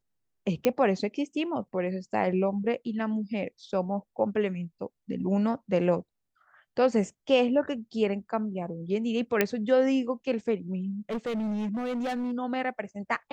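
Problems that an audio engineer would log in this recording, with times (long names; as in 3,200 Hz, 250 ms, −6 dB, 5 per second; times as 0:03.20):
0:00.65: click −11 dBFS
0:09.41: click −8 dBFS
0:11.10–0:12.33: clipping −27.5 dBFS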